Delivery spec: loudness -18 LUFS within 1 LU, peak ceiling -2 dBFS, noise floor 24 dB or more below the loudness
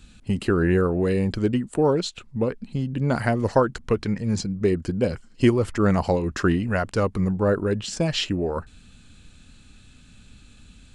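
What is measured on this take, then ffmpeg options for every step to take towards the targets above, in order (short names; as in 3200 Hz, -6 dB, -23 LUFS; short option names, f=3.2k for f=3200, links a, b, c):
loudness -23.5 LUFS; peak -5.5 dBFS; loudness target -18.0 LUFS
-> -af "volume=5.5dB,alimiter=limit=-2dB:level=0:latency=1"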